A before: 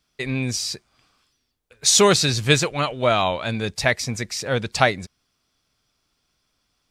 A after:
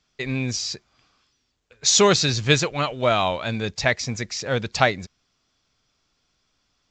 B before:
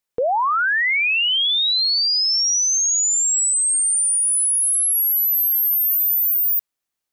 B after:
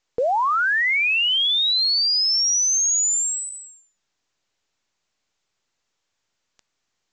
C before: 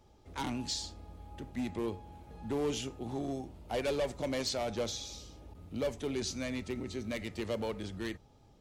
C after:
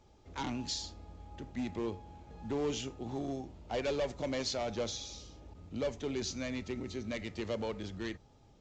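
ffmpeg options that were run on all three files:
-af "volume=-1dB" -ar 16000 -c:a pcm_mulaw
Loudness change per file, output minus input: -1.0, -2.0, -1.0 LU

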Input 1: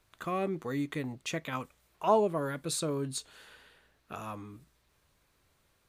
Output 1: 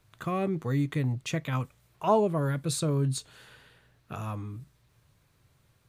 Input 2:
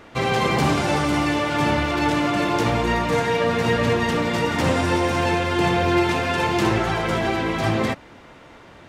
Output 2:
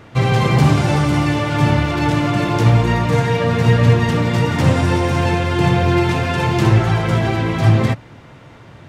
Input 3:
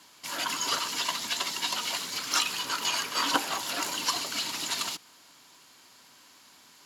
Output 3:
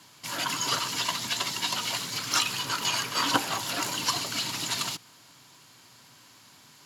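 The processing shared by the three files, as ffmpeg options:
-af "equalizer=f=120:w=1.5:g=14.5,volume=1dB"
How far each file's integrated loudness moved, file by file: +3.5, +5.0, +1.0 LU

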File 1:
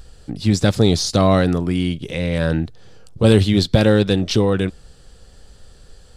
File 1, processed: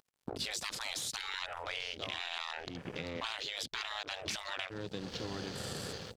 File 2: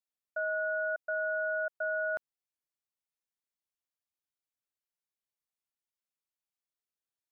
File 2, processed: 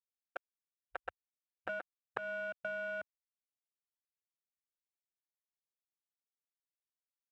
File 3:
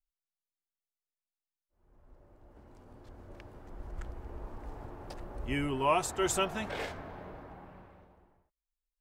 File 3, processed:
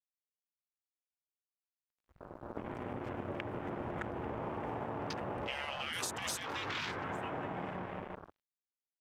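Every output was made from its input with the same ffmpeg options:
-filter_complex "[0:a]highpass=f=110:w=0.5412,highpass=f=110:w=1.3066,dynaudnorm=f=170:g=5:m=15.5dB,asplit=2[a][b];[b]aecho=0:1:843:0.0891[c];[a][c]amix=inputs=2:normalize=0,afftfilt=real='re*lt(hypot(re,im),0.141)':imag='im*lt(hypot(re,im),0.141)':win_size=1024:overlap=0.75,aeval=exprs='sgn(val(0))*max(abs(val(0))-0.00562,0)':c=same,acompressor=threshold=-46dB:ratio=8,afwtdn=0.00112,volume=10dB"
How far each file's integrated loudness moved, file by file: -21.5, -10.0, -5.0 LU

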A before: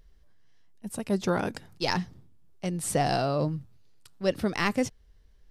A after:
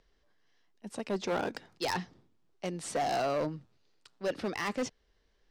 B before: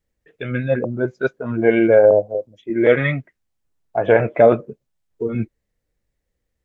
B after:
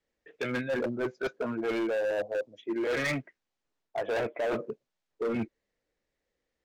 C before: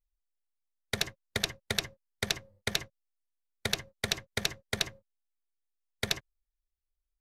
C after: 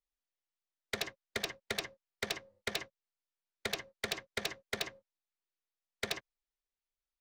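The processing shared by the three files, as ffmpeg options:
-filter_complex "[0:a]acrossover=split=240 7100:gain=0.178 1 0.0631[a][b][c];[a][b][c]amix=inputs=3:normalize=0,areverse,acompressor=threshold=-22dB:ratio=10,areverse,asoftclip=type=hard:threshold=-26.5dB"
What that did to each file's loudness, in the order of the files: -5.5, -14.0, -5.5 LU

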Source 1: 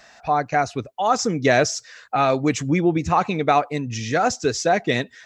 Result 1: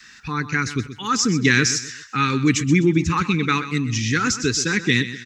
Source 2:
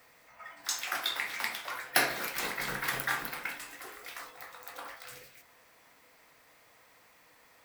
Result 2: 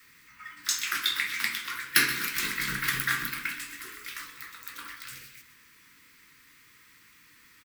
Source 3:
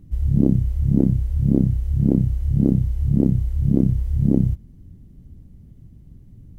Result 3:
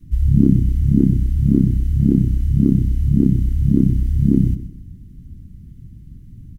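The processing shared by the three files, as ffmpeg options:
-filter_complex "[0:a]adynamicequalizer=threshold=0.0447:dfrequency=110:dqfactor=0.81:tfrequency=110:tqfactor=0.81:attack=5:release=100:ratio=0.375:range=2:mode=cutabove:tftype=bell,asuperstop=centerf=660:order=4:qfactor=0.64,asplit=2[a][b];[b]aecho=0:1:127|254|381:0.224|0.0784|0.0274[c];[a][c]amix=inputs=2:normalize=0,volume=5.5dB"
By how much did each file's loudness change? +1.0, +5.0, +3.0 LU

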